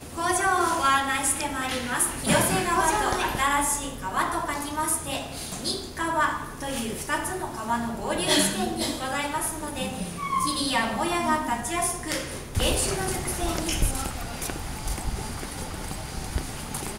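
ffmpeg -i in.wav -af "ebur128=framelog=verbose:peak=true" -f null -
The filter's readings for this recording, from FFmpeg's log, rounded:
Integrated loudness:
  I:         -26.2 LUFS
  Threshold: -36.2 LUFS
Loudness range:
  LRA:         5.4 LU
  Threshold: -46.3 LUFS
  LRA low:   -28.7 LUFS
  LRA high:  -23.3 LUFS
True peak:
  Peak:       -7.4 dBFS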